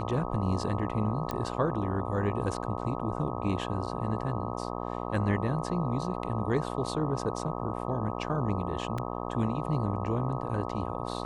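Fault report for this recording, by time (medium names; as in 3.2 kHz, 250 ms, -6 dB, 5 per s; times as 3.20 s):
buzz 60 Hz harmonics 21 -35 dBFS
1.31 s: pop -18 dBFS
8.98 s: dropout 3.6 ms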